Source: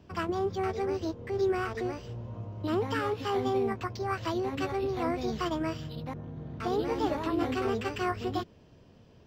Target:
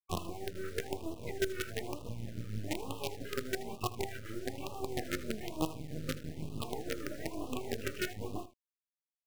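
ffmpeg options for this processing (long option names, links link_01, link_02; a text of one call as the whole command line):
ffmpeg -i in.wav -filter_complex "[0:a]acrossover=split=3200[link_01][link_02];[link_02]acompressor=threshold=-53dB:ratio=4:attack=1:release=60[link_03];[link_01][link_03]amix=inputs=2:normalize=0,afftfilt=real='re*gte(hypot(re,im),0.0224)':imag='im*gte(hypot(re,im),0.0224)':win_size=1024:overlap=0.75,alimiter=level_in=3.5dB:limit=-24dB:level=0:latency=1:release=211,volume=-3.5dB,acompressor=threshold=-45dB:ratio=5,flanger=delay=19:depth=5.4:speed=2.3,tremolo=f=6.2:d=0.52,acrusher=bits=8:dc=4:mix=0:aa=0.000001,aecho=1:1:79:0.158,afftfilt=real='re*(1-between(b*sr/1024,840*pow(1800/840,0.5+0.5*sin(2*PI*1.1*pts/sr))/1.41,840*pow(1800/840,0.5+0.5*sin(2*PI*1.1*pts/sr))*1.41))':imag='im*(1-between(b*sr/1024,840*pow(1800/840,0.5+0.5*sin(2*PI*1.1*pts/sr))/1.41,840*pow(1800/840,0.5+0.5*sin(2*PI*1.1*pts/sr))*1.41))':win_size=1024:overlap=0.75,volume=16dB" out.wav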